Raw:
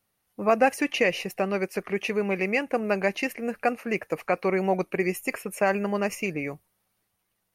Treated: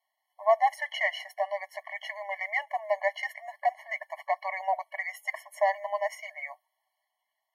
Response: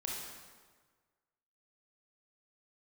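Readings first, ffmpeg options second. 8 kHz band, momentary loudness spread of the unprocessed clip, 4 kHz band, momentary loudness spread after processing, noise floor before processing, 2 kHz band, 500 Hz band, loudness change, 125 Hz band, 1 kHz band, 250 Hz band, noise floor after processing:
-11.5 dB, 7 LU, -4.0 dB, 11 LU, -77 dBFS, -3.0 dB, -6.0 dB, -4.5 dB, under -40 dB, +0.5 dB, under -40 dB, -83 dBFS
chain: -filter_complex "[0:a]acrossover=split=180|420|3900[a][b][c][d];[c]acontrast=80[e];[a][b][e][d]amix=inputs=4:normalize=0,highshelf=f=5.1k:g=-5.5,afftfilt=real='re*eq(mod(floor(b*sr/1024/570),2),1)':imag='im*eq(mod(floor(b*sr/1024/570),2),1)':win_size=1024:overlap=0.75,volume=-5dB"

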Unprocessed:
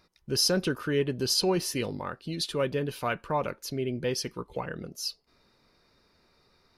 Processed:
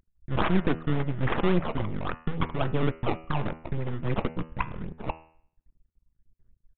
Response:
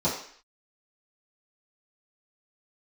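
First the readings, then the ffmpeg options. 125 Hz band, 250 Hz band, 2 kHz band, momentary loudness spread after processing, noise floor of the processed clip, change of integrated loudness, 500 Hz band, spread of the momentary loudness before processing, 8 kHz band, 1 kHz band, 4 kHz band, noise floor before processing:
+6.5 dB, +3.0 dB, +1.5 dB, 9 LU, -81 dBFS, -0.5 dB, -2.5 dB, 11 LU, under -40 dB, +3.0 dB, -12.0 dB, -67 dBFS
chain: -af "anlmdn=3.98,aphaser=in_gain=1:out_gain=1:delay=1:decay=0.71:speed=1.4:type=sinusoidal,aecho=1:1:0.9:0.55,alimiter=limit=-15dB:level=0:latency=1:release=135,acrusher=samples=19:mix=1:aa=0.000001:lfo=1:lforange=19:lforate=3.6,aeval=exprs='max(val(0),0)':c=same,adynamicsmooth=sensitivity=4:basefreq=1.7k,bandreject=f=80.34:t=h:w=4,bandreject=f=160.68:t=h:w=4,bandreject=f=241.02:t=h:w=4,bandreject=f=321.36:t=h:w=4,bandreject=f=401.7:t=h:w=4,bandreject=f=482.04:t=h:w=4,bandreject=f=562.38:t=h:w=4,bandreject=f=642.72:t=h:w=4,bandreject=f=723.06:t=h:w=4,bandreject=f=803.4:t=h:w=4,bandreject=f=883.74:t=h:w=4,bandreject=f=964.08:t=h:w=4,bandreject=f=1.04442k:t=h:w=4,bandreject=f=1.12476k:t=h:w=4,bandreject=f=1.2051k:t=h:w=4,bandreject=f=1.28544k:t=h:w=4,bandreject=f=1.36578k:t=h:w=4,bandreject=f=1.44612k:t=h:w=4,bandreject=f=1.52646k:t=h:w=4,bandreject=f=1.6068k:t=h:w=4,bandreject=f=1.68714k:t=h:w=4,bandreject=f=1.76748k:t=h:w=4,bandreject=f=1.84782k:t=h:w=4,bandreject=f=1.92816k:t=h:w=4,bandreject=f=2.0085k:t=h:w=4,bandreject=f=2.08884k:t=h:w=4,bandreject=f=2.16918k:t=h:w=4,bandreject=f=2.24952k:t=h:w=4,bandreject=f=2.32986k:t=h:w=4,bandreject=f=2.4102k:t=h:w=4,bandreject=f=2.49054k:t=h:w=4,bandreject=f=2.57088k:t=h:w=4,bandreject=f=2.65122k:t=h:w=4,bandreject=f=2.73156k:t=h:w=4,bandreject=f=2.8119k:t=h:w=4,bandreject=f=2.89224k:t=h:w=4,bandreject=f=2.97258k:t=h:w=4,aresample=8000,aresample=44100,volume=5dB"

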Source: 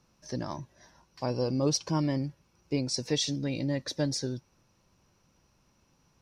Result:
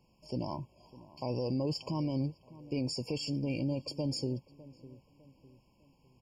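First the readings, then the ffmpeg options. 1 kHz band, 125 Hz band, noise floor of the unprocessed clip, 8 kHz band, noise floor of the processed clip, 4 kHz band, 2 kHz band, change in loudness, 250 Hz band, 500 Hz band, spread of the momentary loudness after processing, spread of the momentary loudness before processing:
-5.0 dB, -3.0 dB, -69 dBFS, -13.5 dB, -68 dBFS, -7.0 dB, -8.0 dB, -4.0 dB, -3.0 dB, -4.5 dB, 19 LU, 11 LU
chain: -filter_complex "[0:a]alimiter=level_in=1.5dB:limit=-24dB:level=0:latency=1:release=19,volume=-1.5dB,asplit=2[a][b];[b]adelay=604,lowpass=f=1.2k:p=1,volume=-18dB,asplit=2[c][d];[d]adelay=604,lowpass=f=1.2k:p=1,volume=0.42,asplit=2[e][f];[f]adelay=604,lowpass=f=1.2k:p=1,volume=0.42[g];[c][e][g]amix=inputs=3:normalize=0[h];[a][h]amix=inputs=2:normalize=0,afftfilt=real='re*eq(mod(floor(b*sr/1024/1100),2),0)':imag='im*eq(mod(floor(b*sr/1024/1100),2),0)':win_size=1024:overlap=0.75"

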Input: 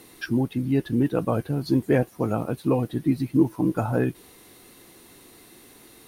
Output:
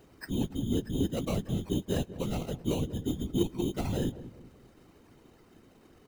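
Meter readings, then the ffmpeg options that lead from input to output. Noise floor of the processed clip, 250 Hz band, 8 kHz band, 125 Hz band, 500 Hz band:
-59 dBFS, -8.5 dB, n/a, -7.0 dB, -8.5 dB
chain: -filter_complex "[0:a]lowpass=f=1.6k:p=1,lowshelf=f=120:g=10.5,asplit=2[a][b];[b]alimiter=limit=-20dB:level=0:latency=1:release=117,volume=-2dB[c];[a][c]amix=inputs=2:normalize=0,acrusher=samples=13:mix=1:aa=0.000001,aeval=exprs='0.562*(cos(1*acos(clip(val(0)/0.562,-1,1)))-cos(1*PI/2))+0.0224*(cos(5*acos(clip(val(0)/0.562,-1,1)))-cos(5*PI/2))':c=same,afftfilt=real='hypot(re,im)*cos(2*PI*random(0))':imag='hypot(re,im)*sin(2*PI*random(1))':win_size=512:overlap=0.75,asplit=2[d][e];[e]adelay=194,lowpass=f=990:p=1,volume=-14dB,asplit=2[f][g];[g]adelay=194,lowpass=f=990:p=1,volume=0.44,asplit=2[h][i];[i]adelay=194,lowpass=f=990:p=1,volume=0.44,asplit=2[j][k];[k]adelay=194,lowpass=f=990:p=1,volume=0.44[l];[f][h][j][l]amix=inputs=4:normalize=0[m];[d][m]amix=inputs=2:normalize=0,volume=-7.5dB"

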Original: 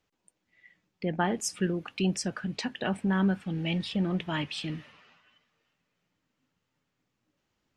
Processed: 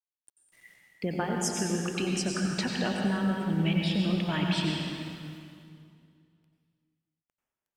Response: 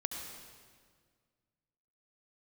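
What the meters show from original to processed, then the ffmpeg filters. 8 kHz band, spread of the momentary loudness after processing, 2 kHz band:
+3.0 dB, 11 LU, +1.0 dB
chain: -filter_complex "[0:a]acompressor=threshold=-29dB:ratio=6,acrusher=bits=10:mix=0:aa=0.000001[a];[1:a]atrim=start_sample=2205,asetrate=33516,aresample=44100[b];[a][b]afir=irnorm=-1:irlink=0,volume=2dB"

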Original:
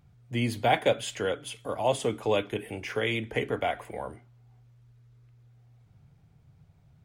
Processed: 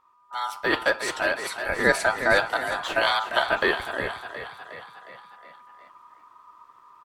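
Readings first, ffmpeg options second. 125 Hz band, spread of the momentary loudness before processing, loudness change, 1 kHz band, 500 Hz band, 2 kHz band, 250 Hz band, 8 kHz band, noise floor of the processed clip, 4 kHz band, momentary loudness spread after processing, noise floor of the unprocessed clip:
-8.0 dB, 11 LU, +5.5 dB, +5.0 dB, +2.0 dB, +12.5 dB, -0.5 dB, +4.5 dB, -58 dBFS, +6.5 dB, 16 LU, -60 dBFS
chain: -filter_complex "[0:a]aeval=exprs='val(0)*sin(2*PI*1100*n/s)':c=same,asplit=7[a][b][c][d][e][f][g];[b]adelay=361,afreqshift=33,volume=-11dB[h];[c]adelay=722,afreqshift=66,volume=-16dB[i];[d]adelay=1083,afreqshift=99,volume=-21.1dB[j];[e]adelay=1444,afreqshift=132,volume=-26.1dB[k];[f]adelay=1805,afreqshift=165,volume=-31.1dB[l];[g]adelay=2166,afreqshift=198,volume=-36.2dB[m];[a][h][i][j][k][l][m]amix=inputs=7:normalize=0,dynaudnorm=f=270:g=7:m=9dB"

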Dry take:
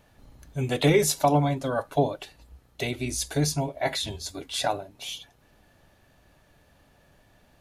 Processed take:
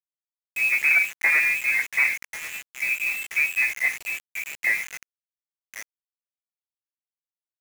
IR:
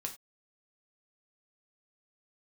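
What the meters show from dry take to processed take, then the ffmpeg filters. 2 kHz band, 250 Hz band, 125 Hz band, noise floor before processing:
+16.5 dB, under -25 dB, under -30 dB, -61 dBFS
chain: -filter_complex "[0:a]agate=range=-33dB:threshold=-51dB:ratio=3:detection=peak,flanger=delay=15:depth=2.9:speed=1.1,asuperstop=centerf=1800:order=20:qfactor=0.98,aresample=8000,asoftclip=type=tanh:threshold=-23dB,aresample=44100,lowpass=f=2.3k:t=q:w=0.5098,lowpass=f=2.3k:t=q:w=0.6013,lowpass=f=2.3k:t=q:w=0.9,lowpass=f=2.3k:t=q:w=2.563,afreqshift=-2700,highpass=f=160:w=0.5412,highpass=f=160:w=1.3066,aecho=1:1:1091:0.141,asplit=2[a][b];[1:a]atrim=start_sample=2205,lowpass=4.7k[c];[b][c]afir=irnorm=-1:irlink=0,volume=-19dB[d];[a][d]amix=inputs=2:normalize=0,acrusher=bits=6:mix=0:aa=0.000001,volume=8dB"

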